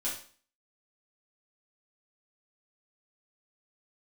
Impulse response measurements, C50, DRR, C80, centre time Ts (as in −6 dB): 5.0 dB, −7.5 dB, 10.5 dB, 33 ms